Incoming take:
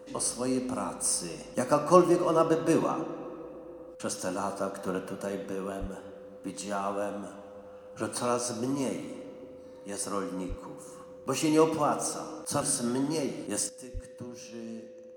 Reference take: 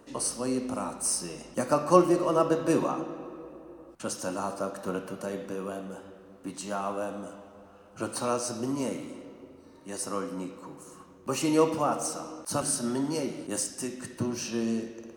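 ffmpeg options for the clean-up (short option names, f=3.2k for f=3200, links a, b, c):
-filter_complex "[0:a]bandreject=f=510:w=30,asplit=3[a][b][c];[a]afade=t=out:st=5.8:d=0.02[d];[b]highpass=f=140:w=0.5412,highpass=f=140:w=1.3066,afade=t=in:st=5.8:d=0.02,afade=t=out:st=5.92:d=0.02[e];[c]afade=t=in:st=5.92:d=0.02[f];[d][e][f]amix=inputs=3:normalize=0,asplit=3[g][h][i];[g]afade=t=out:st=10.48:d=0.02[j];[h]highpass=f=140:w=0.5412,highpass=f=140:w=1.3066,afade=t=in:st=10.48:d=0.02,afade=t=out:st=10.6:d=0.02[k];[i]afade=t=in:st=10.6:d=0.02[l];[j][k][l]amix=inputs=3:normalize=0,asplit=3[m][n][o];[m]afade=t=out:st=13.93:d=0.02[p];[n]highpass=f=140:w=0.5412,highpass=f=140:w=1.3066,afade=t=in:st=13.93:d=0.02,afade=t=out:st=14.05:d=0.02[q];[o]afade=t=in:st=14.05:d=0.02[r];[p][q][r]amix=inputs=3:normalize=0,asetnsamples=n=441:p=0,asendcmd='13.69 volume volume 12dB',volume=0dB"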